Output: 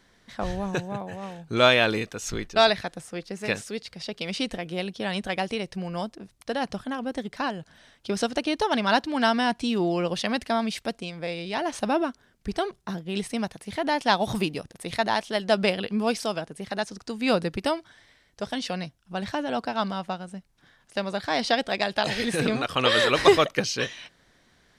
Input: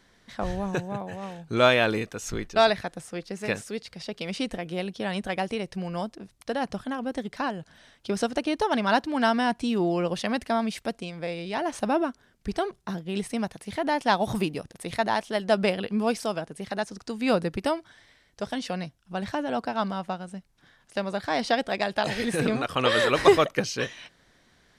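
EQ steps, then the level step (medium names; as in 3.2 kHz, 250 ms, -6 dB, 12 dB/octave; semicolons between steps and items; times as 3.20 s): dynamic bell 4 kHz, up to +5 dB, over -44 dBFS, Q 0.79; 0.0 dB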